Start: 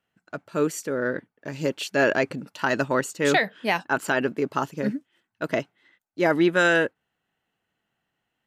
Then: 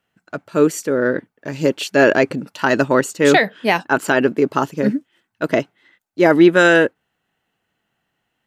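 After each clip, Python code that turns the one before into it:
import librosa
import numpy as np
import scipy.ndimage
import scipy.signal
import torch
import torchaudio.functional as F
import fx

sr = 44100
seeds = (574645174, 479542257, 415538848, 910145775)

y = fx.dynamic_eq(x, sr, hz=340.0, q=0.88, threshold_db=-34.0, ratio=4.0, max_db=4)
y = y * 10.0 ** (6.0 / 20.0)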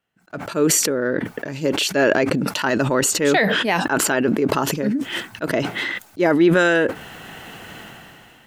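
y = fx.sustainer(x, sr, db_per_s=21.0)
y = y * 10.0 ** (-5.0 / 20.0)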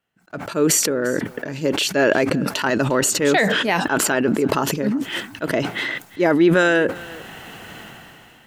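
y = x + 10.0 ** (-21.0 / 20.0) * np.pad(x, (int(350 * sr / 1000.0), 0))[:len(x)]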